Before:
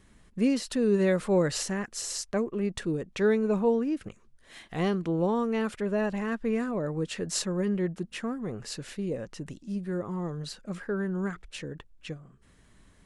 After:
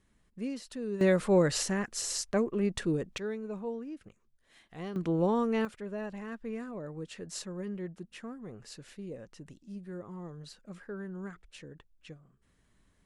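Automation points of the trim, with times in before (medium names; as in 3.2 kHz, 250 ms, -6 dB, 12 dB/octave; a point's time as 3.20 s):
-11.5 dB
from 1.01 s 0 dB
from 3.18 s -12.5 dB
from 4.96 s -1 dB
from 5.65 s -10 dB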